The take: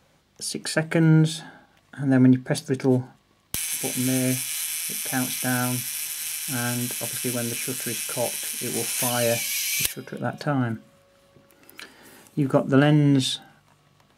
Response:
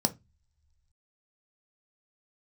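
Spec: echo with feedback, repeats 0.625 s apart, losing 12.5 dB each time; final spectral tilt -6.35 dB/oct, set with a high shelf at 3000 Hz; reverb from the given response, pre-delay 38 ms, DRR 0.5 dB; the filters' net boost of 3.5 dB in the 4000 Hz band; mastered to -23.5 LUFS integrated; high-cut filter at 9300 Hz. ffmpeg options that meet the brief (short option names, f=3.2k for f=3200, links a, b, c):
-filter_complex "[0:a]lowpass=9.3k,highshelf=f=3k:g=-5,equalizer=f=4k:t=o:g=8.5,aecho=1:1:625|1250|1875:0.237|0.0569|0.0137,asplit=2[a][b];[1:a]atrim=start_sample=2205,adelay=38[c];[b][c]afir=irnorm=-1:irlink=0,volume=-8dB[d];[a][d]amix=inputs=2:normalize=0,volume=-6.5dB"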